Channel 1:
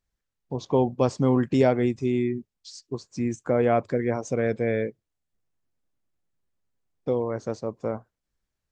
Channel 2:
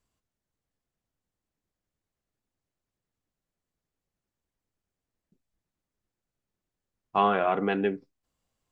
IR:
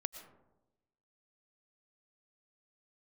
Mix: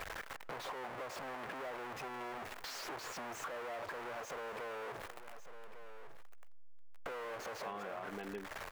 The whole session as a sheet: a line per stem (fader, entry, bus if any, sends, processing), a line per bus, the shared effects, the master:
−4.0 dB, 0.00 s, send −15.5 dB, echo send −18 dB, sign of each sample alone; three-way crossover with the lows and the highs turned down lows −20 dB, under 490 Hz, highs −17 dB, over 2,400 Hz
−8.5 dB, 0.50 s, no send, no echo send, no processing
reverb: on, RT60 1.0 s, pre-delay 75 ms
echo: single-tap delay 1,151 ms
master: downward compressor 6 to 1, threshold −41 dBFS, peak gain reduction 14.5 dB

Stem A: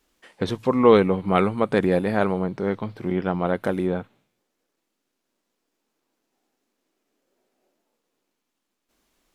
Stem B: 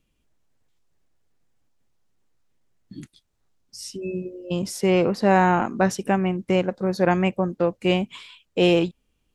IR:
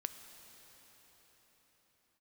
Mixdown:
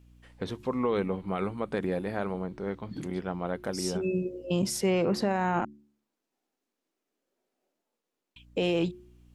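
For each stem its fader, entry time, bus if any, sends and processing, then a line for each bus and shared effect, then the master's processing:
−9.0 dB, 0.00 s, no send, no processing
+0.5 dB, 0.00 s, muted 0:05.65–0:08.36, no send, brickwall limiter −16 dBFS, peak gain reduction 10 dB; mains hum 60 Hz, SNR 28 dB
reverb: not used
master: hum removal 71.92 Hz, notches 5; brickwall limiter −18.5 dBFS, peak gain reduction 6.5 dB

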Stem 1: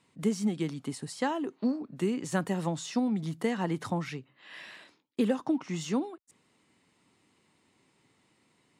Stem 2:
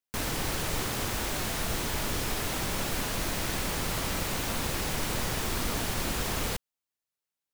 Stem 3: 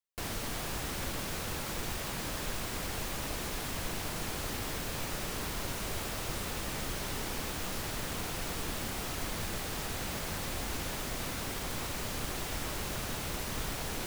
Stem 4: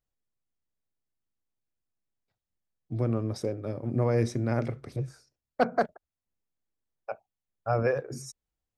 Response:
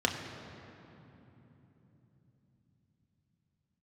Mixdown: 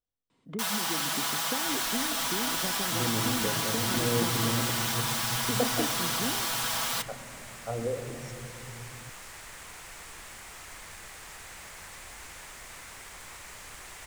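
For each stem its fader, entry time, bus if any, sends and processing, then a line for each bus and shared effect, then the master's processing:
−3.0 dB, 0.30 s, send −18.5 dB, downward compressor, threshold −31 dBFS, peak gain reduction 9 dB; high-shelf EQ 7,700 Hz −9.5 dB; treble cut that deepens with the level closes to 1,100 Hz, closed at −34 dBFS
+1.0 dB, 0.45 s, send −18 dB, high-pass filter 760 Hz 24 dB per octave; comb filter 6.1 ms, depth 76%
−13.0 dB, 1.50 s, no send, octave-band graphic EQ 125/250/1,000/2,000/8,000 Hz −3/−6/+5/+9/+10 dB
−9.5 dB, 0.00 s, send −8 dB, treble cut that deepens with the level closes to 480 Hz, closed at −24 dBFS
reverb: on, RT60 3.4 s, pre-delay 3 ms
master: no processing

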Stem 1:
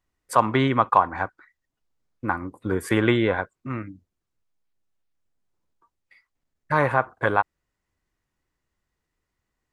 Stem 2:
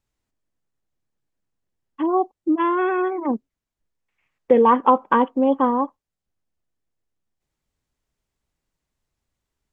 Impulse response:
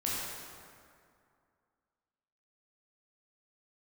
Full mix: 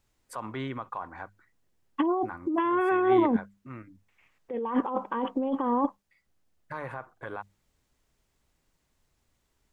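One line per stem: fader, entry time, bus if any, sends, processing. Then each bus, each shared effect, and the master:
−19.0 dB, 0.00 s, no send, brickwall limiter −12.5 dBFS, peak gain reduction 8.5 dB
0.0 dB, 0.00 s, no send, no processing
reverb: not used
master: mains-hum notches 50/100/150/200 Hz; compressor whose output falls as the input rises −26 dBFS, ratio −1

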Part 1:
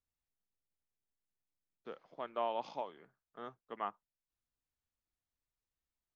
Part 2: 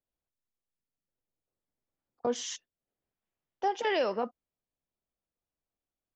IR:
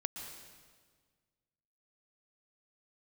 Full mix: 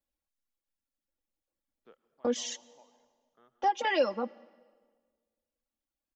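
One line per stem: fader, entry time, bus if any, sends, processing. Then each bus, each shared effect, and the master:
−12.0 dB, 0.00 s, send −11 dB, reverb reduction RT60 1.3 s; automatic ducking −22 dB, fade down 0.35 s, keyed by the second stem
−1.5 dB, 0.00 s, send −18.5 dB, reverb reduction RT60 1.1 s; comb filter 3.6 ms, depth 83%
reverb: on, RT60 1.6 s, pre-delay 110 ms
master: no processing

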